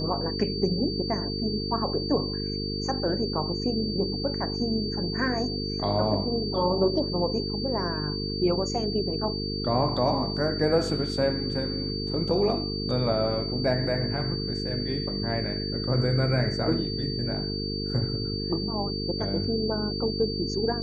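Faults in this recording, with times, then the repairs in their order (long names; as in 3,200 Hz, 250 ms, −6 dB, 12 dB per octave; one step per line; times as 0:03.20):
mains buzz 50 Hz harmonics 9 −32 dBFS
whistle 4,600 Hz −33 dBFS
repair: notch filter 4,600 Hz, Q 30
hum removal 50 Hz, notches 9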